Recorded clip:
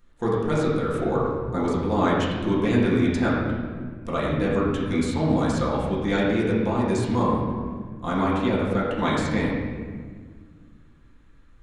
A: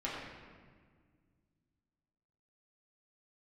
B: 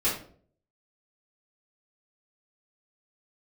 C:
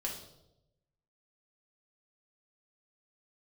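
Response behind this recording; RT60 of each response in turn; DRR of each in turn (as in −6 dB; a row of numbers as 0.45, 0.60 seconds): A; 1.7, 0.50, 0.90 seconds; −7.5, −10.5, −2.5 decibels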